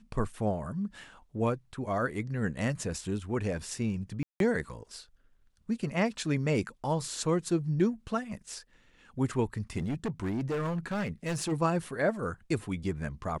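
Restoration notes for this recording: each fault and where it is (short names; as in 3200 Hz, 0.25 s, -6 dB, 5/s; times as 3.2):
4.23–4.4 gap 0.172 s
9.77–11.53 clipped -28 dBFS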